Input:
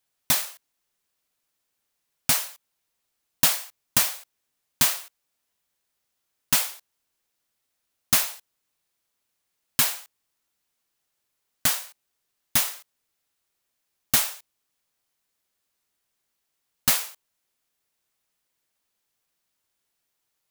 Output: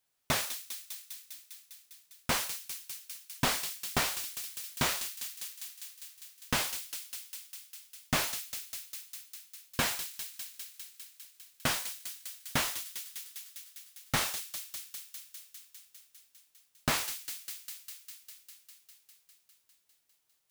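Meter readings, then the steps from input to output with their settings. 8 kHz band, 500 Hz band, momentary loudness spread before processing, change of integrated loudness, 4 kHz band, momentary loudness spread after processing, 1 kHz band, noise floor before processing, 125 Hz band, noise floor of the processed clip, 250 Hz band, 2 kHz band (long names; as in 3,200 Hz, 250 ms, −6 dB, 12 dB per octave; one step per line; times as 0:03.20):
−8.5 dB, +1.5 dB, 11 LU, −11.5 dB, −5.5 dB, 18 LU, −1.0 dB, −79 dBFS, 0.0 dB, −73 dBFS, 0.0 dB, −2.5 dB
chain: delay with a high-pass on its return 201 ms, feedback 77%, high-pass 2,500 Hz, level −15 dB
slew-rate limiting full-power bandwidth 250 Hz
level −1 dB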